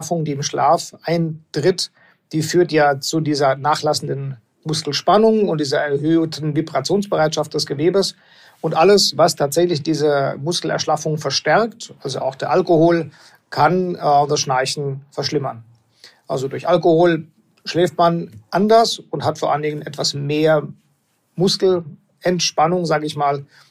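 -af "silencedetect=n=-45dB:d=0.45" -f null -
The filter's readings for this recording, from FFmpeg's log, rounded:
silence_start: 20.75
silence_end: 21.37 | silence_duration: 0.62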